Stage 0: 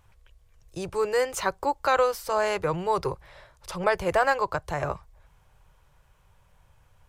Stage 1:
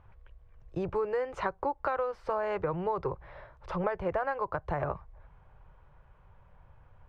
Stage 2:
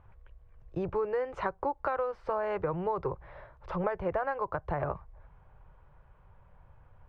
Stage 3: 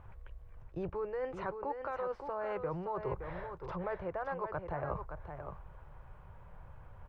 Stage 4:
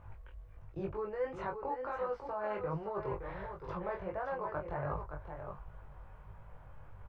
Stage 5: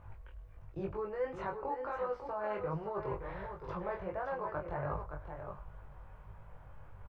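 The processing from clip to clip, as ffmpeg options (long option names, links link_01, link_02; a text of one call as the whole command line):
ffmpeg -i in.wav -af "lowpass=1600,acompressor=threshold=-31dB:ratio=6,volume=3dB" out.wav
ffmpeg -i in.wav -af "highshelf=frequency=4500:gain=-10" out.wav
ffmpeg -i in.wav -af "areverse,acompressor=threshold=-39dB:ratio=10,areverse,aecho=1:1:569:0.422,volume=4.5dB" out.wav
ffmpeg -i in.wav -filter_complex "[0:a]flanger=delay=18.5:depth=5.2:speed=1.4,asplit=2[link_01][link_02];[link_02]adelay=20,volume=-6dB[link_03];[link_01][link_03]amix=inputs=2:normalize=0,volume=2dB" out.wav
ffmpeg -i in.wav -af "aecho=1:1:102:0.126" out.wav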